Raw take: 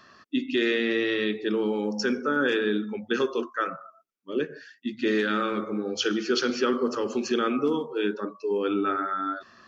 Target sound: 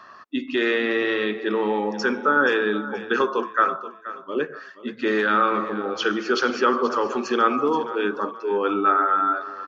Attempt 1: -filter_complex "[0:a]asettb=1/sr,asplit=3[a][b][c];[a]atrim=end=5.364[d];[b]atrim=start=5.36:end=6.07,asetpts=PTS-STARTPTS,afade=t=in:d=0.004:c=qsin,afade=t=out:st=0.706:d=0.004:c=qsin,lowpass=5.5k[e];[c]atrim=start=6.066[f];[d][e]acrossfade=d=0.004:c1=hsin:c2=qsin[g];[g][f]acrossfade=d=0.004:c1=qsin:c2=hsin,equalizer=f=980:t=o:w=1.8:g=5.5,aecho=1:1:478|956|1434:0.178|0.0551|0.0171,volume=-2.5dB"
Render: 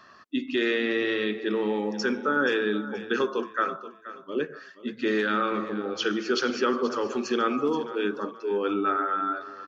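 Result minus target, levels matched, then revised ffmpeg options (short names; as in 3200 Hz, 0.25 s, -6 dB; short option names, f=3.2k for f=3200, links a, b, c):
1000 Hz band -3.0 dB
-filter_complex "[0:a]asettb=1/sr,asplit=3[a][b][c];[a]atrim=end=5.364[d];[b]atrim=start=5.36:end=6.07,asetpts=PTS-STARTPTS,afade=t=in:d=0.004:c=qsin,afade=t=out:st=0.706:d=0.004:c=qsin,lowpass=5.5k[e];[c]atrim=start=6.066[f];[d][e]acrossfade=d=0.004:c1=hsin:c2=qsin[g];[g][f]acrossfade=d=0.004:c1=qsin:c2=hsin,equalizer=f=980:t=o:w=1.8:g=15,aecho=1:1:478|956|1434:0.178|0.0551|0.0171,volume=-2.5dB"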